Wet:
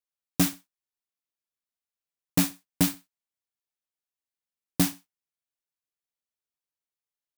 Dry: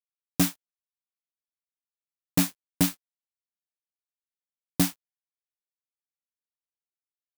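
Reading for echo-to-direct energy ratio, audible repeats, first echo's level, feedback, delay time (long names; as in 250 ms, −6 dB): −18.0 dB, 2, −18.0 dB, 24%, 64 ms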